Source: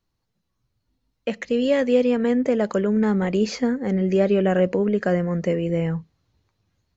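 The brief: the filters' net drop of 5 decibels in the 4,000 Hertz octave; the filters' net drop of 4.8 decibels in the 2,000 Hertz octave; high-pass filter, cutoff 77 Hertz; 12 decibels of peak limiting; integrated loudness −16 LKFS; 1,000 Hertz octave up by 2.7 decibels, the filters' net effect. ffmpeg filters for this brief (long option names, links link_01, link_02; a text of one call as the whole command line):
ffmpeg -i in.wav -af "highpass=77,equalizer=frequency=1000:width_type=o:gain=5.5,equalizer=frequency=2000:width_type=o:gain=-7,equalizer=frequency=4000:width_type=o:gain=-4.5,volume=11.5dB,alimiter=limit=-7.5dB:level=0:latency=1" out.wav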